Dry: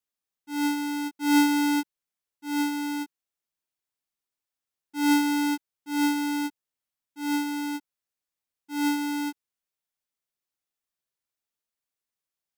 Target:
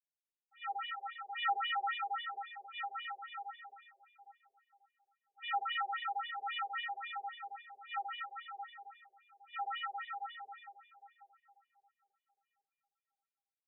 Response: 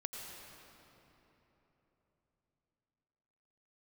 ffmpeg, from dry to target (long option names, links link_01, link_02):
-filter_complex "[0:a]agate=range=-11dB:threshold=-31dB:ratio=16:detection=peak,flanger=delay=7.9:depth=5.6:regen=-72:speed=0.32:shape=sinusoidal,asetrate=40572,aresample=44100[link_01];[1:a]atrim=start_sample=2205[link_02];[link_01][link_02]afir=irnorm=-1:irlink=0,afftfilt=real='re*between(b*sr/1024,530*pow(2800/530,0.5+0.5*sin(2*PI*3.7*pts/sr))/1.41,530*pow(2800/530,0.5+0.5*sin(2*PI*3.7*pts/sr))*1.41)':imag='im*between(b*sr/1024,530*pow(2800/530,0.5+0.5*sin(2*PI*3.7*pts/sr))/1.41,530*pow(2800/530,0.5+0.5*sin(2*PI*3.7*pts/sr))*1.41)':win_size=1024:overlap=0.75,volume=6dB"